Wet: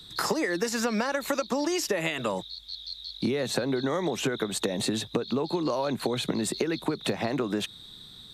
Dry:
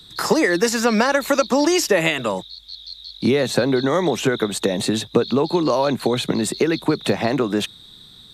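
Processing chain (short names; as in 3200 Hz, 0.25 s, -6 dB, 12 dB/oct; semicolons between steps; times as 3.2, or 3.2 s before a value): compressor, threshold -22 dBFS, peak gain reduction 11 dB; gain -2.5 dB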